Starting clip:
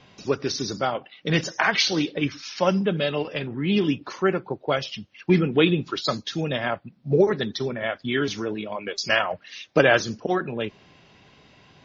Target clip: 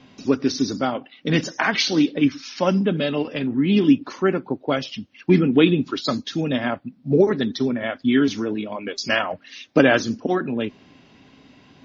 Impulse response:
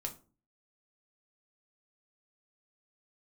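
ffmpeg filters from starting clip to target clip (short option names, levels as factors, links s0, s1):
-af "equalizer=f=260:w=3.2:g=13.5"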